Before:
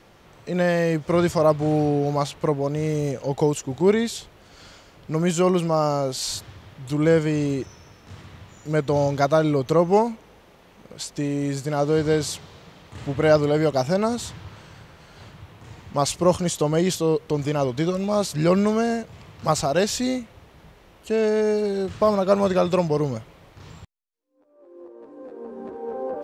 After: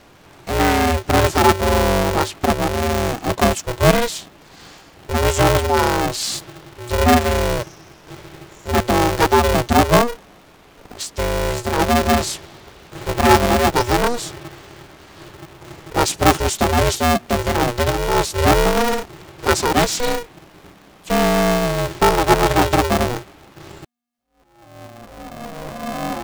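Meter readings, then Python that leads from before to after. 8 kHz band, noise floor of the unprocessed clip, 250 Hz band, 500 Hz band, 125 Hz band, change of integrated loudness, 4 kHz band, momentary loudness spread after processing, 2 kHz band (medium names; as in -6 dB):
+7.5 dB, -52 dBFS, +2.5 dB, +2.0 dB, +4.0 dB, +4.5 dB, +9.5 dB, 14 LU, +11.0 dB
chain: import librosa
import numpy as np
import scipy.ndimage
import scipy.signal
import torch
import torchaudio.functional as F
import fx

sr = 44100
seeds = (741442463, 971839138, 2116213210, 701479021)

y = x * np.sign(np.sin(2.0 * np.pi * 240.0 * np.arange(len(x)) / sr))
y = F.gain(torch.from_numpy(y), 4.5).numpy()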